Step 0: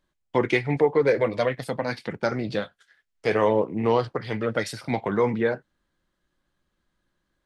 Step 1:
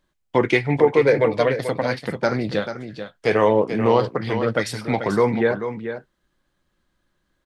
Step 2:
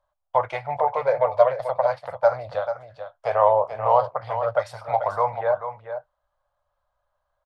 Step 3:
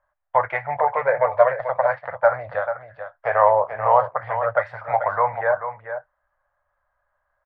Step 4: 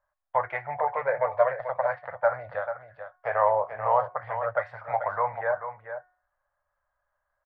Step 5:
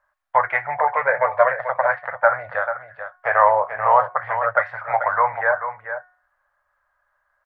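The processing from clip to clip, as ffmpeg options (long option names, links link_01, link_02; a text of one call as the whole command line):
ffmpeg -i in.wav -af "aecho=1:1:438:0.335,volume=4dB" out.wav
ffmpeg -i in.wav -af "firequalizer=gain_entry='entry(100,0);entry(220,-28);entry(360,-22);entry(590,14);entry(1200,8);entry(1800,-6);entry(3800,-7);entry(6400,-9)':delay=0.05:min_phase=1,volume=-7dB" out.wav
ffmpeg -i in.wav -af "lowpass=frequency=1800:width_type=q:width=4.2" out.wav
ffmpeg -i in.wav -af "bandreject=frequency=364.2:width_type=h:width=4,bandreject=frequency=728.4:width_type=h:width=4,bandreject=frequency=1092.6:width_type=h:width=4,bandreject=frequency=1456.8:width_type=h:width=4,bandreject=frequency=1821:width_type=h:width=4,bandreject=frequency=2185.2:width_type=h:width=4,volume=-6.5dB" out.wav
ffmpeg -i in.wav -af "equalizer=frequency=1600:width_type=o:width=1.9:gain=11.5,volume=1.5dB" out.wav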